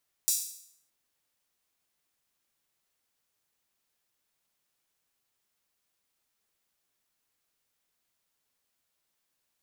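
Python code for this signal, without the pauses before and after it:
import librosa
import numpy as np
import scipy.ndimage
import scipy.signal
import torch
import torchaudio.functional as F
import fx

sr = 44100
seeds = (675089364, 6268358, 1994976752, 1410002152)

y = fx.drum_hat_open(sr, length_s=0.62, from_hz=6200.0, decay_s=0.66)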